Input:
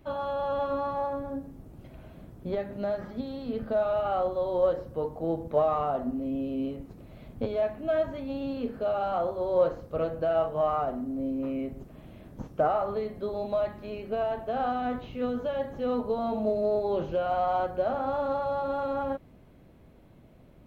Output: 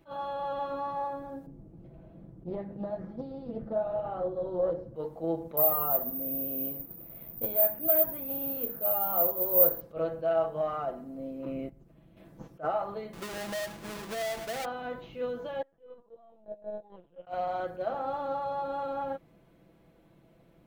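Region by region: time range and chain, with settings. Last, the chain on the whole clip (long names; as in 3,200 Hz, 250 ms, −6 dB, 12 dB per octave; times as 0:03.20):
0:01.46–0:04.96: tilt shelving filter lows +10 dB, about 840 Hz + flanger 1.1 Hz, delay 6.3 ms, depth 7 ms, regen −60% + highs frequency-modulated by the lows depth 0.33 ms
0:05.57–0:09.81: low-pass filter 2,500 Hz 6 dB per octave + bad sample-rate conversion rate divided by 3×, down filtered, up zero stuff
0:11.45–0:12.17: noise gate −36 dBFS, range −13 dB + low-shelf EQ 220 Hz +10.5 dB + upward compression, threshold −44 dBFS
0:13.13–0:14.65: each half-wave held at its own peak + downward compressor 4 to 1, threshold −30 dBFS
0:15.62–0:17.27: noise gate −25 dBFS, range −24 dB + low shelf with overshoot 110 Hz −12 dB, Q 1.5 + linear-prediction vocoder at 8 kHz pitch kept
whole clip: low-shelf EQ 130 Hz −8.5 dB; comb filter 6 ms, depth 55%; level that may rise only so fast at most 310 dB per second; level −4 dB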